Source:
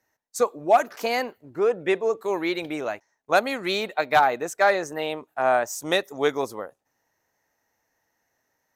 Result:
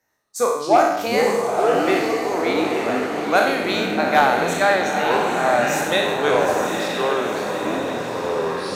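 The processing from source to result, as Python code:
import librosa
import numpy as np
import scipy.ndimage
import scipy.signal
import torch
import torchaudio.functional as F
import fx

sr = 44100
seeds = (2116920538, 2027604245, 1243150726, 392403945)

p1 = fx.spec_trails(x, sr, decay_s=0.86)
p2 = fx.hum_notches(p1, sr, base_hz=50, count=9)
p3 = p2 + fx.echo_diffused(p2, sr, ms=922, feedback_pct=54, wet_db=-4.5, dry=0)
y = fx.echo_pitch(p3, sr, ms=84, semitones=-7, count=2, db_per_echo=-6.0)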